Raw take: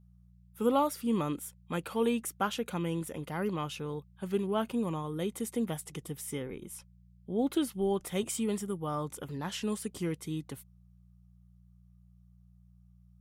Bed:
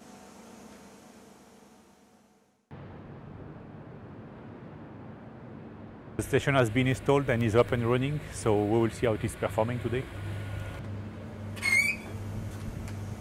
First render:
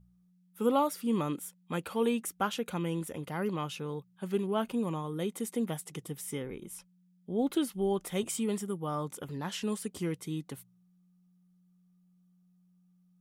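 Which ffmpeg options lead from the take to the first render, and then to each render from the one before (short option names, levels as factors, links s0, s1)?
-af "bandreject=f=60:t=h:w=4,bandreject=f=120:t=h:w=4"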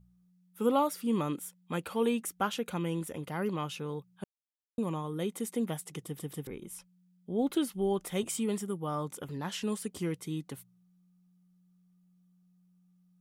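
-filter_complex "[0:a]asplit=6[s0][s1][s2][s3][s4][s5];[s0]atrim=end=4.24,asetpts=PTS-STARTPTS,afade=t=out:st=4.236:d=0.004:c=hsin[s6];[s1]atrim=start=4.24:end=4.78,asetpts=PTS-STARTPTS,volume=0[s7];[s2]atrim=start=4.78:end=6.192,asetpts=PTS-STARTPTS,afade=t=in:d=0.004:c=hsin[s8];[s3]atrim=start=6.048:end=6.192[s9];[s4]atrim=start=6.048:end=6.192[s10];[s5]atrim=start=6.468[s11];[s6][s7][s8]concat=n=3:v=0:a=1[s12];[s12][s9]acrossfade=d=0.004:c1=hsin:c2=hsin[s13];[s13][s10]acrossfade=d=0.004:c1=hsin:c2=hsin[s14];[s14][s11]acrossfade=d=0.004:c1=hsin:c2=hsin"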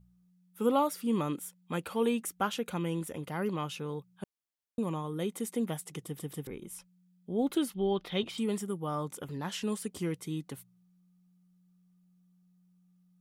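-filter_complex "[0:a]asettb=1/sr,asplit=3[s0][s1][s2];[s0]atrim=end=7.744[s3];[s1]atrim=start=7.74:end=8.38,asetpts=PTS-STARTPTS,afade=t=in:d=0.004:c=qsin,afade=t=out:st=0.636:d=0.004:c=qsin,highshelf=f=5600:t=q:w=3:g=-14[s4];[s2]atrim=start=8.376[s5];[s3][s4]acrossfade=d=0.004:c1=hsin:c2=qsin[s6];[s6][s5]acrossfade=d=0.004:c1=qsin:c2=hsin"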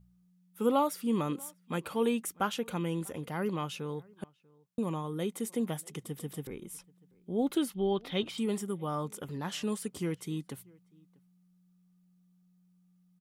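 -filter_complex "[0:a]asplit=2[s0][s1];[s1]adelay=641.4,volume=0.0501,highshelf=f=4000:g=-14.4[s2];[s0][s2]amix=inputs=2:normalize=0"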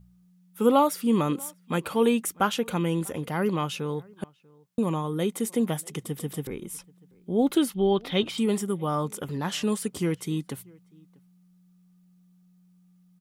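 -af "volume=2.24"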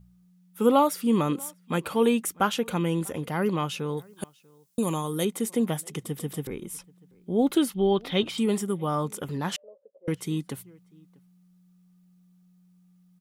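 -filter_complex "[0:a]asettb=1/sr,asplit=3[s0][s1][s2];[s0]atrim=end=3.974[s3];[s1]atrim=start=3.97:end=5.25,asetpts=PTS-STARTPTS,afade=t=in:d=0.004:c=qsin,afade=t=out:st=1.276:d=0.004:c=qsin,bass=f=250:g=-2,treble=f=4000:g=14[s4];[s2]atrim=start=5.246[s5];[s3][s4]acrossfade=d=0.004:c1=hsin:c2=qsin[s6];[s6][s5]acrossfade=d=0.004:c1=qsin:c2=hsin,asettb=1/sr,asplit=3[s7][s8][s9];[s7]atrim=end=9.564[s10];[s8]atrim=start=9.56:end=10.08,asetpts=PTS-STARTPTS,afade=t=in:d=0.004:c=qsin,afade=t=out:st=0.516:d=0.004:c=qsin,asuperpass=centerf=560:order=4:qfactor=6.3[s11];[s9]atrim=start=10.076[s12];[s10][s11]acrossfade=d=0.004:c1=hsin:c2=qsin[s13];[s13][s12]acrossfade=d=0.004:c1=qsin:c2=hsin"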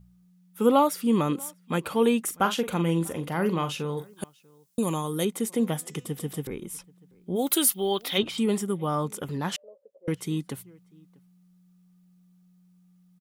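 -filter_complex "[0:a]asplit=3[s0][s1][s2];[s0]afade=t=out:st=2.25:d=0.02[s3];[s1]asplit=2[s4][s5];[s5]adelay=42,volume=0.316[s6];[s4][s6]amix=inputs=2:normalize=0,afade=t=in:st=2.25:d=0.02,afade=t=out:st=4.09:d=0.02[s7];[s2]afade=t=in:st=4.09:d=0.02[s8];[s3][s7][s8]amix=inputs=3:normalize=0,asettb=1/sr,asplit=3[s9][s10][s11];[s9]atrim=end=5.534[s12];[s10]atrim=start=5.53:end=6.42,asetpts=PTS-STARTPTS,afade=t=in:d=0.004:c=qsin,afade=t=out:st=0.886:d=0.004:c=qsin,bandreject=f=247.6:t=h:w=4,bandreject=f=495.2:t=h:w=4,bandreject=f=742.8:t=h:w=4,bandreject=f=990.4:t=h:w=4,bandreject=f=1238:t=h:w=4,bandreject=f=1485.6:t=h:w=4,bandreject=f=1733.2:t=h:w=4,bandreject=f=1980.8:t=h:w=4,bandreject=f=2228.4:t=h:w=4,bandreject=f=2476:t=h:w=4,bandreject=f=2723.6:t=h:w=4,bandreject=f=2971.2:t=h:w=4,bandreject=f=3218.8:t=h:w=4,bandreject=f=3466.4:t=h:w=4,bandreject=f=3714:t=h:w=4,bandreject=f=3961.6:t=h:w=4,bandreject=f=4209.2:t=h:w=4,bandreject=f=4456.8:t=h:w=4,bandreject=f=4704.4:t=h:w=4,bandreject=f=4952:t=h:w=4,bandreject=f=5199.6:t=h:w=4,bandreject=f=5447.2:t=h:w=4,bandreject=f=5694.8:t=h:w=4,bandreject=f=5942.4:t=h:w=4,bandreject=f=6190:t=h:w=4,bandreject=f=6437.6:t=h:w=4,bandreject=f=6685.2:t=h:w=4,bandreject=f=6932.8:t=h:w=4,bandreject=f=7180.4:t=h:w=4,bandreject=f=7428:t=h:w=4,bandreject=f=7675.6:t=h:w=4,bandreject=f=7923.2:t=h:w=4,bandreject=f=8170.8:t=h:w=4[s13];[s11]atrim=start=6.416[s14];[s12][s13]acrossfade=d=0.004:c1=hsin:c2=qsin[s15];[s15][s14]acrossfade=d=0.004:c1=qsin:c2=hsin,asplit=3[s16][s17][s18];[s16]afade=t=out:st=7.35:d=0.02[s19];[s17]aemphasis=mode=production:type=riaa,afade=t=in:st=7.35:d=0.02,afade=t=out:st=8.17:d=0.02[s20];[s18]afade=t=in:st=8.17:d=0.02[s21];[s19][s20][s21]amix=inputs=3:normalize=0"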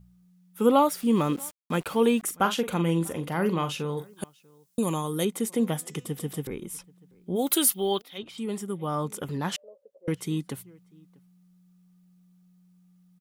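-filter_complex "[0:a]asettb=1/sr,asplit=3[s0][s1][s2];[s0]atrim=end=0.884[s3];[s1]atrim=start=0.88:end=2.23,asetpts=PTS-STARTPTS,afade=t=in:d=0.004:c=qsin,afade=t=out:st=1.346:d=0.004:c=qsin,aeval=exprs='val(0)*gte(abs(val(0)),0.00794)':c=same[s4];[s2]atrim=start=2.226[s5];[s3][s4]acrossfade=d=0.004:c1=hsin:c2=qsin[s6];[s6][s5]acrossfade=d=0.004:c1=qsin:c2=hsin,asplit=2[s7][s8];[s7]atrim=end=8.02,asetpts=PTS-STARTPTS,afade=t=out:st=8.016:d=0.004:c=hsin:silence=0.0794328[s9];[s8]atrim=start=8.02,asetpts=PTS-STARTPTS,afade=t=in:d=1.18:silence=0.0794328[s10];[s9][s10]concat=n=2:v=0:a=1"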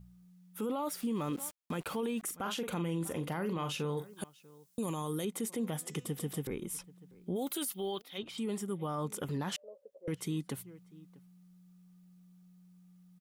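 -af "acompressor=threshold=0.0112:ratio=1.5,alimiter=level_in=1.5:limit=0.0631:level=0:latency=1:release=13,volume=0.668"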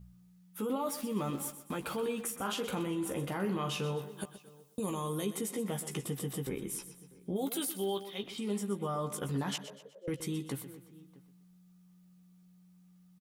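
-filter_complex "[0:a]asplit=2[s0][s1];[s1]adelay=15,volume=0.501[s2];[s0][s2]amix=inputs=2:normalize=0,asplit=2[s3][s4];[s4]aecho=0:1:124|248|372|496:0.237|0.0949|0.0379|0.0152[s5];[s3][s5]amix=inputs=2:normalize=0"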